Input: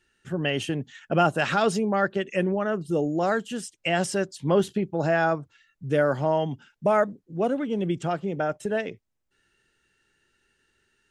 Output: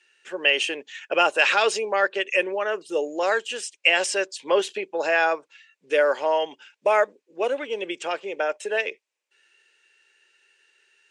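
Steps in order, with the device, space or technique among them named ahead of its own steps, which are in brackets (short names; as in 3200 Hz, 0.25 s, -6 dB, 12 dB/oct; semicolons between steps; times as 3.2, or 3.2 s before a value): phone speaker on a table (speaker cabinet 470–8900 Hz, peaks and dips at 710 Hz -9 dB, 1300 Hz -6 dB, 2500 Hz +8 dB); gain +6.5 dB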